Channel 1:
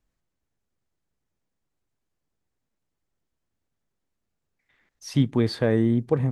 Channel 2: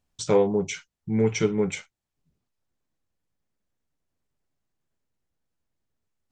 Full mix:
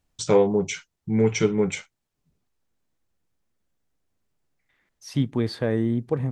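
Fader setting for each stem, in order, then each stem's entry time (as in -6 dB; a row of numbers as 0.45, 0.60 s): -2.5, +2.0 dB; 0.00, 0.00 s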